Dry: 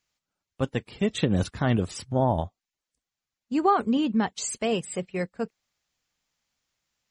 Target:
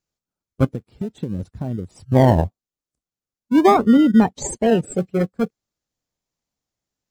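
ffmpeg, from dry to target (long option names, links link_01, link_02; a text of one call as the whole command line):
ffmpeg -i in.wav -filter_complex "[0:a]asettb=1/sr,asplit=3[link_01][link_02][link_03];[link_01]atrim=end=0.654[link_04];[link_02]atrim=start=0.65:end=2.06,asetpts=PTS-STARTPTS,afade=type=in:duration=0.004:curve=qsin,afade=type=out:start_time=1.406:duration=0.004:curve=qsin,acompressor=threshold=-39dB:ratio=3[link_05];[link_03]atrim=start=2.056[link_06];[link_04][link_05]acrossfade=duration=0.004:curve1=hsin:curve2=qsin[link_07];[link_07][link_06]acrossfade=duration=0.004:curve1=qsin:curve2=hsin,equalizer=frequency=2400:width_type=o:width=1.8:gain=-8,asplit=2[link_08][link_09];[link_09]acrusher=samples=37:mix=1:aa=0.000001:lfo=1:lforange=22.2:lforate=0.43,volume=-5.5dB[link_10];[link_08][link_10]amix=inputs=2:normalize=0,asettb=1/sr,asplit=3[link_11][link_12][link_13];[link_11]atrim=end=3.744[link_14];[link_12]atrim=start=3.74:end=4.96,asetpts=PTS-STARTPTS,afade=type=in:duration=0.004:curve=qsin,afade=type=out:start_time=1.216:duration=0.004:curve=qsin,highshelf=frequency=7800:gain=-5[link_15];[link_13]atrim=start=4.956[link_16];[link_14][link_15]acrossfade=duration=0.004:curve1=hsin:curve2=qsin[link_17];[link_17][link_16]acrossfade=duration=0.004:curve1=qsin:curve2=hsin,afftdn=noise_reduction=12:noise_floor=-34,volume=8dB" out.wav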